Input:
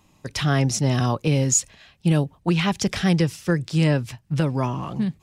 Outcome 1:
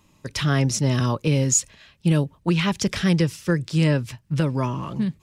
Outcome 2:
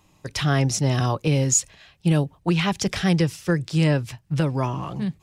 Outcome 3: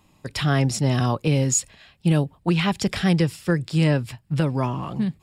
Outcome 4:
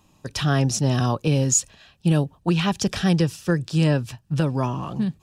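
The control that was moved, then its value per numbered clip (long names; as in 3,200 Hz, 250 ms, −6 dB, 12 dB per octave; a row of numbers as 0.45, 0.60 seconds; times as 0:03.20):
notch filter, centre frequency: 750, 230, 6,100, 2,100 Hertz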